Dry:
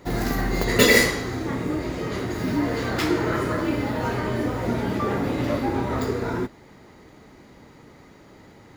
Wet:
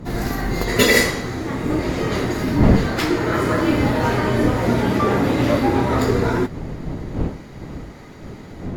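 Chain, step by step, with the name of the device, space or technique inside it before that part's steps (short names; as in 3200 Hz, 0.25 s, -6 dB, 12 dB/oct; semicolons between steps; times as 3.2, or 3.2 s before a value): smartphone video outdoors (wind noise 230 Hz; AGC gain up to 7 dB; AAC 64 kbps 44100 Hz)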